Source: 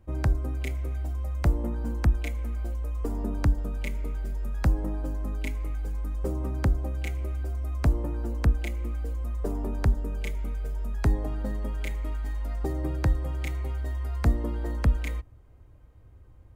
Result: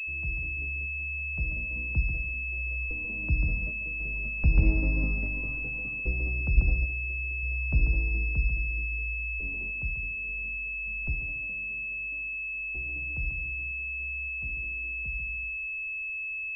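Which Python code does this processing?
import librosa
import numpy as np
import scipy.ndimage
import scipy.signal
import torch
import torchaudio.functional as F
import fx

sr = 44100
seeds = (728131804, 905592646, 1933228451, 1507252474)

p1 = fx.doppler_pass(x, sr, speed_mps=16, closest_m=9.6, pass_at_s=4.99)
p2 = p1 + fx.echo_feedback(p1, sr, ms=141, feedback_pct=22, wet_db=-6.5, dry=0)
p3 = fx.room_shoebox(p2, sr, seeds[0], volume_m3=1900.0, walls='furnished', distance_m=0.52)
p4 = np.clip(p3, -10.0 ** (-26.0 / 20.0), 10.0 ** (-26.0 / 20.0))
p5 = p3 + (p4 * 10.0 ** (-4.0 / 20.0))
p6 = fx.peak_eq(p5, sr, hz=86.0, db=3.0, octaves=2.5)
p7 = fx.hum_notches(p6, sr, base_hz=50, count=6)
p8 = fx.tremolo_random(p7, sr, seeds[1], hz=3.5, depth_pct=55)
p9 = fx.tilt_eq(p8, sr, slope=-3.5)
p10 = fx.pwm(p9, sr, carrier_hz=2600.0)
y = p10 * 10.0 ** (-7.0 / 20.0)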